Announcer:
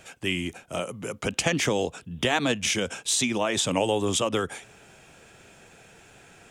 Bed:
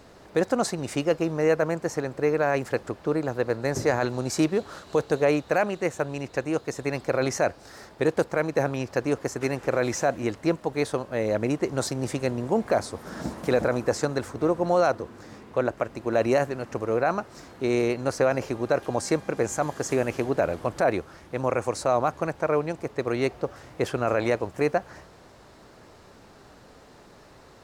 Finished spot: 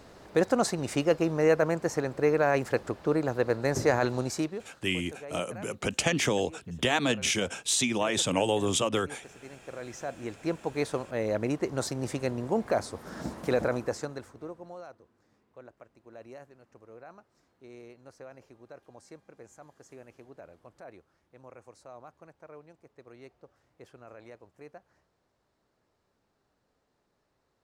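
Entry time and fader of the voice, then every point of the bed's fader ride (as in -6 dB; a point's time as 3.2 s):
4.60 s, -2.0 dB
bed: 4.2 s -1 dB
4.86 s -21.5 dB
9.39 s -21.5 dB
10.71 s -4 dB
13.72 s -4 dB
14.88 s -25 dB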